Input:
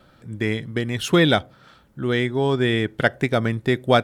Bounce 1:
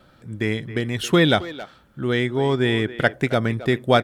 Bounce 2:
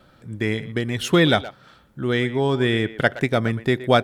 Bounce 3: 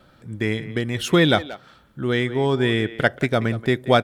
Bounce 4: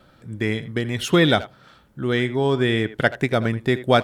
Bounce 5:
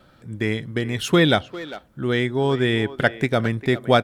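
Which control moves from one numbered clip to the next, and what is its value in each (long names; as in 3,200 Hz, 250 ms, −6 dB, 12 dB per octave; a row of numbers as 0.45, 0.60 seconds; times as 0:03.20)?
far-end echo of a speakerphone, delay time: 270, 120, 180, 80, 400 milliseconds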